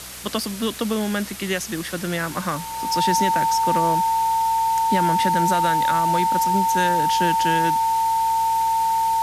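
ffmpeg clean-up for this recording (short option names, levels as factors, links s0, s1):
-af "adeclick=t=4,bandreject=f=62.8:t=h:w=4,bandreject=f=125.6:t=h:w=4,bandreject=f=188.4:t=h:w=4,bandreject=f=900:w=30,afftdn=nr=30:nf=-31"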